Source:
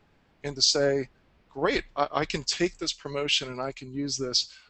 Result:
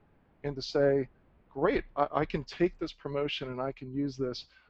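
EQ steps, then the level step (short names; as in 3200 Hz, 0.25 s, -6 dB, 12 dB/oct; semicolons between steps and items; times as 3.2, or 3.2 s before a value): air absorption 230 m; high shelf 2500 Hz -11.5 dB; 0.0 dB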